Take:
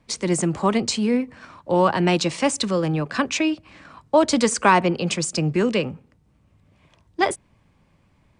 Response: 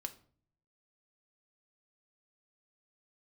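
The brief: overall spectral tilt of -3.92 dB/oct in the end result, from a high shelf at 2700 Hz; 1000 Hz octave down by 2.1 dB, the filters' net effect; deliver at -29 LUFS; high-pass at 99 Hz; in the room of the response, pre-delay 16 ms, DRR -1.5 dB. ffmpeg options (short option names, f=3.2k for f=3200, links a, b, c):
-filter_complex "[0:a]highpass=99,equalizer=f=1k:t=o:g=-3,highshelf=f=2.7k:g=3.5,asplit=2[a][b];[1:a]atrim=start_sample=2205,adelay=16[c];[b][c]afir=irnorm=-1:irlink=0,volume=4dB[d];[a][d]amix=inputs=2:normalize=0,volume=-12dB"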